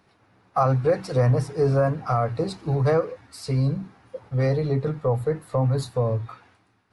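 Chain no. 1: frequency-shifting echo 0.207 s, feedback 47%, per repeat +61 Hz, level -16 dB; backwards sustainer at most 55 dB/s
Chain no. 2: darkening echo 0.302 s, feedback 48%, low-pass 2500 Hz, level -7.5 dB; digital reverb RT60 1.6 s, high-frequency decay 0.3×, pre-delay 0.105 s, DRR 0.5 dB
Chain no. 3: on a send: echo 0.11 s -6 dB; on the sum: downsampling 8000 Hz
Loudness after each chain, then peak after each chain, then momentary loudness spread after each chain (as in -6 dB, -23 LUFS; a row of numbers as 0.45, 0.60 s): -23.0, -21.0, -23.5 LUFS; -10.5, -6.5, -9.0 dBFS; 10, 7, 9 LU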